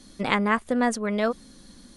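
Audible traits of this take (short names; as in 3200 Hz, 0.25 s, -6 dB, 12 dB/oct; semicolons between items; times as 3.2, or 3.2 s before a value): noise floor -52 dBFS; spectral tilt -5.0 dB/oct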